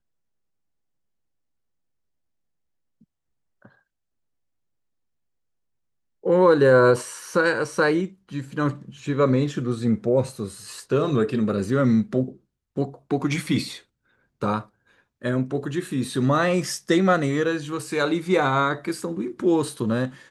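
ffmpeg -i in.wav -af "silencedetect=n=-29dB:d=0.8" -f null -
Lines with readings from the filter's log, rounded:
silence_start: 0.00
silence_end: 6.26 | silence_duration: 6.26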